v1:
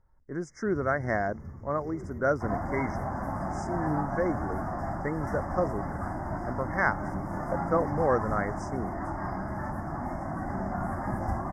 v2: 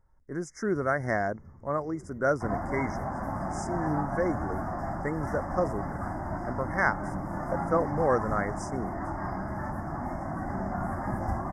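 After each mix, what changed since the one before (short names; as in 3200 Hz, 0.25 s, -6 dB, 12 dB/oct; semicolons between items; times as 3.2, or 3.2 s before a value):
speech: remove air absorption 74 m; first sound -8.5 dB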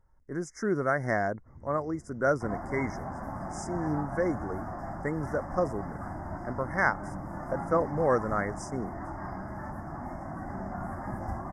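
first sound: entry +0.80 s; second sound -4.5 dB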